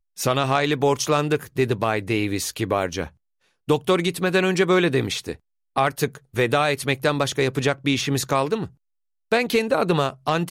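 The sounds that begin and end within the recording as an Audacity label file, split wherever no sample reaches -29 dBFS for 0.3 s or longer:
3.690000	5.330000	sound
5.770000	8.650000	sound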